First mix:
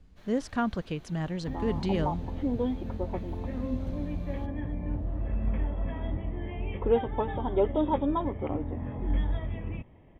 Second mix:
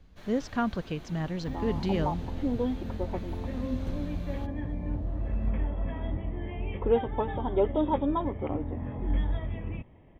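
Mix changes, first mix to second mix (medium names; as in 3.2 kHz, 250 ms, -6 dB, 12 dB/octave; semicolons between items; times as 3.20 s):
speech: add steep low-pass 7 kHz; first sound +6.5 dB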